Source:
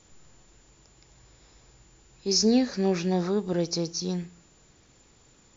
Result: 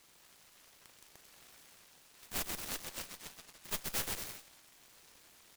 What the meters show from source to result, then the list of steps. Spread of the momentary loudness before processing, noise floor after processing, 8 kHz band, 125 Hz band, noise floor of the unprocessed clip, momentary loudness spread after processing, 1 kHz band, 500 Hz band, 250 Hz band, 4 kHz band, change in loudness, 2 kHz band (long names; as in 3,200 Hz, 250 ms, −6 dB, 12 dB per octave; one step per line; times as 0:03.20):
12 LU, −64 dBFS, can't be measured, −22.0 dB, −59 dBFS, 23 LU, −11.0 dB, −24.0 dB, −28.0 dB, −12.5 dB, −13.5 dB, −2.5 dB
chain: high-shelf EQ 2,400 Hz −11.5 dB
flutter between parallel walls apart 6.6 metres, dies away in 0.25 s
compressor whose output falls as the input rises −36 dBFS, ratio −1
gain into a clipping stage and back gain 32.5 dB
brick-wall band-pass 1,600–6,400 Hz
bouncing-ball delay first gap 130 ms, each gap 0.75×, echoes 5
harmonic generator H 6 −9 dB, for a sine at −26.5 dBFS
short delay modulated by noise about 1,500 Hz, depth 0.26 ms
level +1 dB